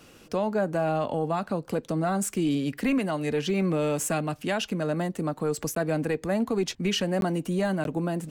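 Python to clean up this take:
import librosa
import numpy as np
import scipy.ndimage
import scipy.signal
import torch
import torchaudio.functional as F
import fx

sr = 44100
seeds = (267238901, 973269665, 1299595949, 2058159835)

y = fx.fix_interpolate(x, sr, at_s=(5.75, 7.21, 7.84), length_ms=12.0)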